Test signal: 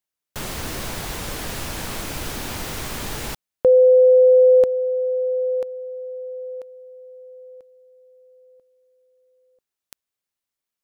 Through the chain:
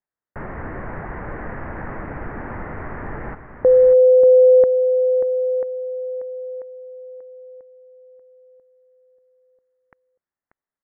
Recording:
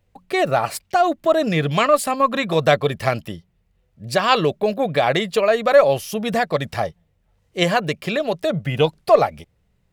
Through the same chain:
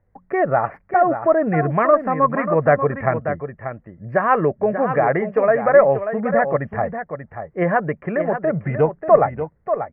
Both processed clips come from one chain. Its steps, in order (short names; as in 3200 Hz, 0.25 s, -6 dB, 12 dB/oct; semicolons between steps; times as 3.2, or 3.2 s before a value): elliptic low-pass 1900 Hz, stop band 50 dB; echo 0.587 s -9 dB; gain +1 dB